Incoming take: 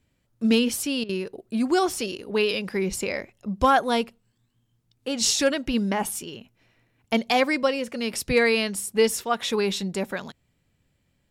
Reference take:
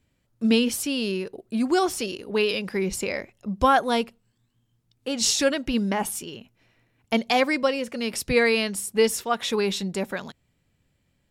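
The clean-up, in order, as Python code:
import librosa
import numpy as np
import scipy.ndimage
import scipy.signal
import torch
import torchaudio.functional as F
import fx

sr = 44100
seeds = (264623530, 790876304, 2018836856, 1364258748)

y = fx.fix_declip(x, sr, threshold_db=-10.5)
y = fx.fix_interpolate(y, sr, at_s=(1.04,), length_ms=50.0)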